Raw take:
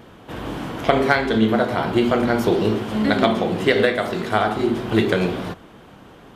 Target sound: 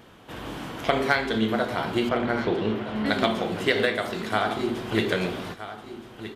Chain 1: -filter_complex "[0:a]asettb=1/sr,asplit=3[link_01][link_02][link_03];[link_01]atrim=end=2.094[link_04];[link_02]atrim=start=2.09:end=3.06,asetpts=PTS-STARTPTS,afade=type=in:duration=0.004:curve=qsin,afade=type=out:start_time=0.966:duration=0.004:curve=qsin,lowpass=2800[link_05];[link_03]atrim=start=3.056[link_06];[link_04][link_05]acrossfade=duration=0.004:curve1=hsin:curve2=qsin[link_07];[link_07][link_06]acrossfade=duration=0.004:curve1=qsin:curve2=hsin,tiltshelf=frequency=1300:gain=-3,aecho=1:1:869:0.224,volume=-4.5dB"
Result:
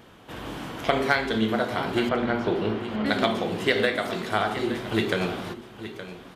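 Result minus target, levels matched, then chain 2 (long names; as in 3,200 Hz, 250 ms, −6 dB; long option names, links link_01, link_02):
echo 401 ms early
-filter_complex "[0:a]asettb=1/sr,asplit=3[link_01][link_02][link_03];[link_01]atrim=end=2.094[link_04];[link_02]atrim=start=2.09:end=3.06,asetpts=PTS-STARTPTS,afade=type=in:duration=0.004:curve=qsin,afade=type=out:start_time=0.966:duration=0.004:curve=qsin,lowpass=2800[link_05];[link_03]atrim=start=3.056[link_06];[link_04][link_05]acrossfade=duration=0.004:curve1=hsin:curve2=qsin[link_07];[link_07][link_06]acrossfade=duration=0.004:curve1=qsin:curve2=hsin,tiltshelf=frequency=1300:gain=-3,aecho=1:1:1270:0.224,volume=-4.5dB"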